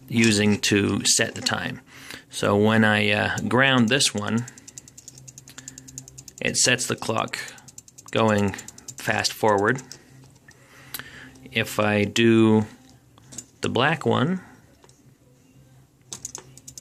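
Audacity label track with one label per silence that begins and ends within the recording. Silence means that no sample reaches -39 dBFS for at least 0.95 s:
14.900000	16.120000	silence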